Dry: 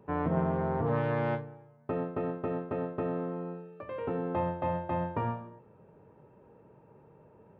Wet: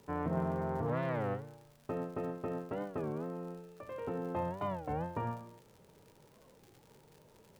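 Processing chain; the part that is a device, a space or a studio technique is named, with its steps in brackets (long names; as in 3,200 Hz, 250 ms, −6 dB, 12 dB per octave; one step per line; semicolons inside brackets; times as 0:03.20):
warped LP (wow of a warped record 33 1/3 rpm, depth 250 cents; surface crackle 93 per second −43 dBFS; pink noise bed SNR 32 dB)
level −5 dB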